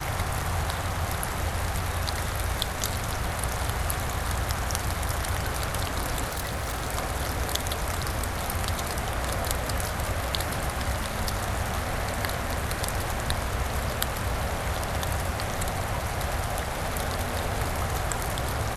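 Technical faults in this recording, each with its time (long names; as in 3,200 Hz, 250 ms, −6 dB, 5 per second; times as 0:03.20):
0:06.31–0:06.88: clipping −26 dBFS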